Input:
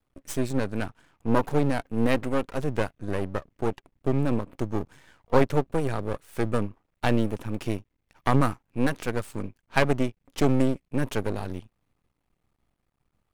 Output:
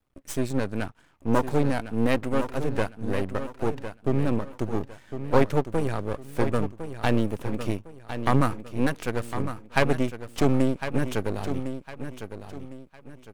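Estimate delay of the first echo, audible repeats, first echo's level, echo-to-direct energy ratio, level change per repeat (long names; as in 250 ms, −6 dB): 1,056 ms, 3, −10.0 dB, −9.5 dB, −10.0 dB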